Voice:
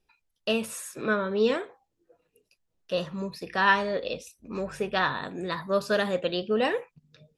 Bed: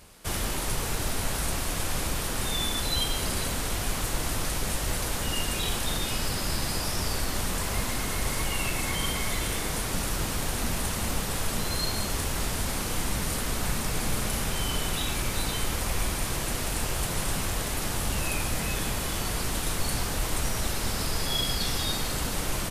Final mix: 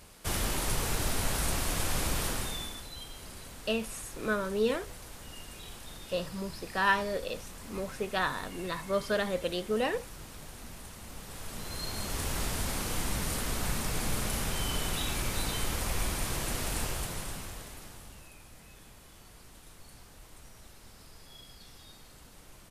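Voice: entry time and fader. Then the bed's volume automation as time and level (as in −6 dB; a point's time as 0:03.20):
3.20 s, −4.5 dB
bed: 0:02.28 −1.5 dB
0:02.90 −17 dB
0:11.06 −17 dB
0:12.30 −3.5 dB
0:16.81 −3.5 dB
0:18.33 −24 dB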